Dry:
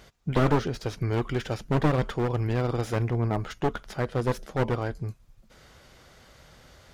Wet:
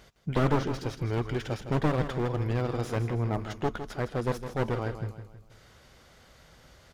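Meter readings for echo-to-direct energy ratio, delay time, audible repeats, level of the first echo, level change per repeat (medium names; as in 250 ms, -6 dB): -9.0 dB, 160 ms, 4, -10.0 dB, -7.5 dB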